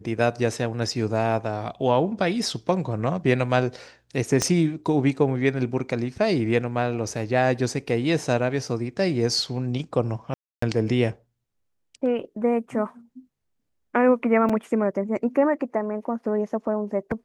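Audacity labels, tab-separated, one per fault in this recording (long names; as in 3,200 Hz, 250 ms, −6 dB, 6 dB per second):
4.420000	4.420000	click −8 dBFS
10.340000	10.620000	drop-out 284 ms
14.490000	14.500000	drop-out 5.3 ms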